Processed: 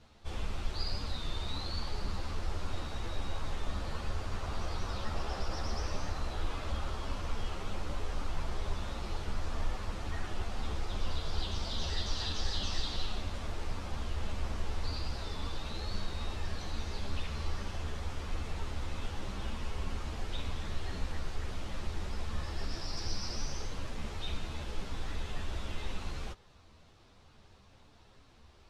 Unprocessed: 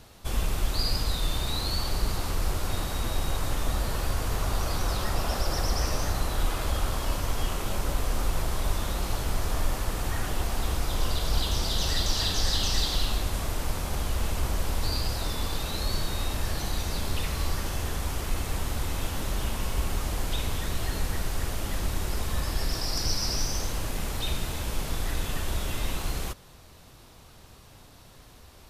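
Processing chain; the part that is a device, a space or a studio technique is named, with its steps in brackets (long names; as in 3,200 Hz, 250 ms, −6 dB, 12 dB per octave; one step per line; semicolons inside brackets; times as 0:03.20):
string-machine ensemble chorus (string-ensemble chorus; low-pass filter 5,100 Hz 12 dB per octave)
level −5 dB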